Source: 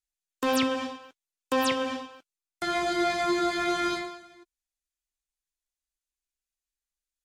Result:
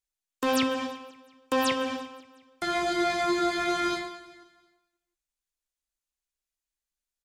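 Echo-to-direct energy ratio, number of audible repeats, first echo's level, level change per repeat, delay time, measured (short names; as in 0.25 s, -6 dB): -20.0 dB, 3, -21.5 dB, -4.5 dB, 0.177 s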